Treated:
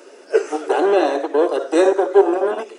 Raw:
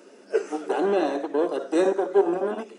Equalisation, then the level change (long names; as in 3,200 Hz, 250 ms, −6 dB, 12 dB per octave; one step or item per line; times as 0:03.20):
high-pass filter 330 Hz 24 dB per octave
+8.0 dB